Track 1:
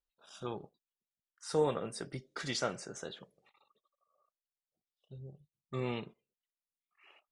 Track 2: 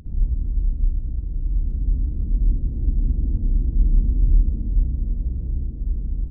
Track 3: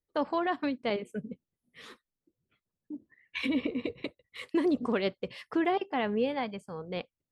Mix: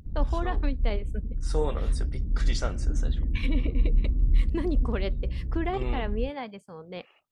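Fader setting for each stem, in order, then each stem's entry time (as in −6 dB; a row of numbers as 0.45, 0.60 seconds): +0.5, −5.5, −3.0 decibels; 0.00, 0.00, 0.00 seconds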